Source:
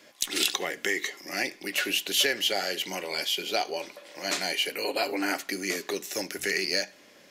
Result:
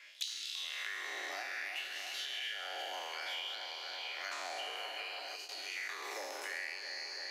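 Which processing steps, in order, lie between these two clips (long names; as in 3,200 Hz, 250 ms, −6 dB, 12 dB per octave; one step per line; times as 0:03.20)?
peak hold with a decay on every bin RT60 2.38 s
Butterworth high-pass 240 Hz 96 dB per octave
spectral tilt −4 dB per octave
downward compressor 10 to 1, threshold −30 dBFS, peak gain reduction 13 dB
auto-filter high-pass sine 0.6 Hz 780–4,700 Hz
echo with a time of its own for lows and highs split 2,600 Hz, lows 332 ms, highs 135 ms, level −9 dB
gain on a spectral selection 0:05.36–0:05.77, 440–2,400 Hz −8 dB
noise gate with hold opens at −35 dBFS
multiband upward and downward compressor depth 100%
level −8.5 dB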